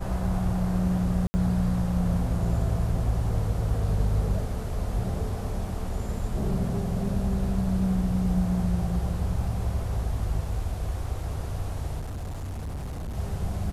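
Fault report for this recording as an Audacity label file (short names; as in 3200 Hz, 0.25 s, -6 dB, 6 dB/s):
1.270000	1.340000	gap 70 ms
11.990000	13.160000	clipped -30.5 dBFS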